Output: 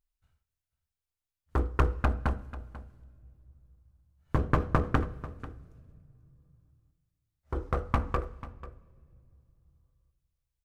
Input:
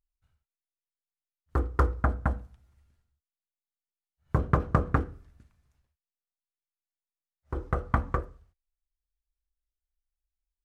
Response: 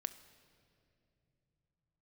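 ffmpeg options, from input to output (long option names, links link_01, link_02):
-filter_complex "[0:a]aeval=exprs='clip(val(0),-1,0.0501)':channel_layout=same,aecho=1:1:491:0.15,asplit=2[link_01][link_02];[1:a]atrim=start_sample=2205[link_03];[link_02][link_03]afir=irnorm=-1:irlink=0,volume=-2.5dB[link_04];[link_01][link_04]amix=inputs=2:normalize=0,volume=-3dB"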